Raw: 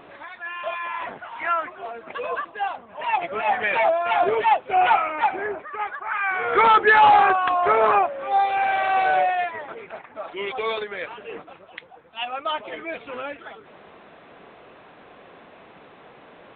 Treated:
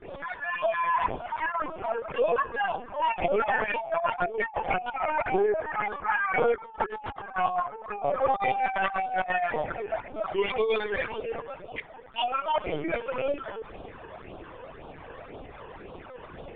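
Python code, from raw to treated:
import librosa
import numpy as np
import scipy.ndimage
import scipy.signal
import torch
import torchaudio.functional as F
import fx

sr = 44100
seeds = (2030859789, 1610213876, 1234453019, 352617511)

y = fx.low_shelf(x, sr, hz=85.0, db=-5.5)
y = fx.echo_feedback(y, sr, ms=441, feedback_pct=32, wet_db=-23.5)
y = fx.rev_schroeder(y, sr, rt60_s=1.5, comb_ms=32, drr_db=16.5)
y = fx.phaser_stages(y, sr, stages=12, low_hz=210.0, high_hz=1900.0, hz=1.9, feedback_pct=25)
y = fx.over_compress(y, sr, threshold_db=-29.0, ratio=-0.5)
y = fx.granulator(y, sr, seeds[0], grain_ms=100.0, per_s=20.0, spray_ms=17.0, spread_st=0)
y = fx.lpc_vocoder(y, sr, seeds[1], excitation='pitch_kept', order=16)
y = fx.high_shelf(y, sr, hz=2500.0, db=-10.5)
y = y * 10.0 ** (5.0 / 20.0)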